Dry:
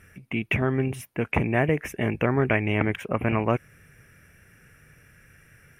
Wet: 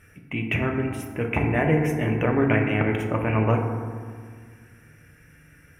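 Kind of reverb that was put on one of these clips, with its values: FDN reverb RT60 1.8 s, low-frequency decay 1.35×, high-frequency decay 0.35×, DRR 1.5 dB; trim -1.5 dB

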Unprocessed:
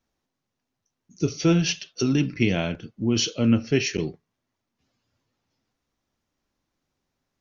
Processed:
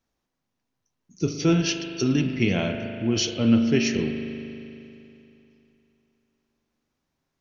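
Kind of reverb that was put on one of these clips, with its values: spring tank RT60 2.9 s, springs 39 ms, chirp 75 ms, DRR 5.5 dB; trim -1 dB

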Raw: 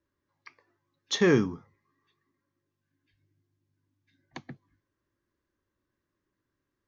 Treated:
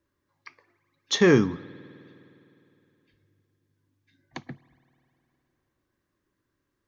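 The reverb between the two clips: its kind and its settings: spring tank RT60 3.1 s, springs 51 ms, chirp 30 ms, DRR 20 dB; trim +4 dB

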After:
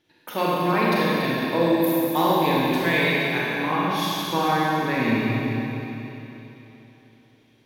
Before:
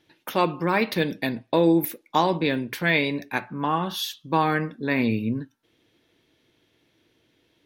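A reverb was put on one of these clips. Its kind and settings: Schroeder reverb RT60 3.4 s, combs from 31 ms, DRR -6.5 dB; trim -4.5 dB

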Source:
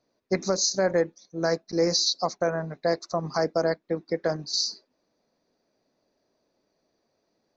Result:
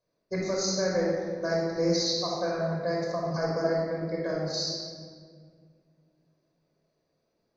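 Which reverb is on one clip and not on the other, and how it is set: simulated room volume 3200 m³, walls mixed, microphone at 5.4 m; trim -11 dB

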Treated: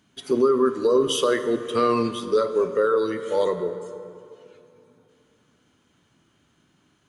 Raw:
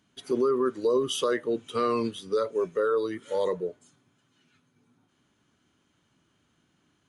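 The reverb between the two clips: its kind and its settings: plate-style reverb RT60 2.7 s, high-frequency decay 0.5×, DRR 9 dB; trim +5 dB

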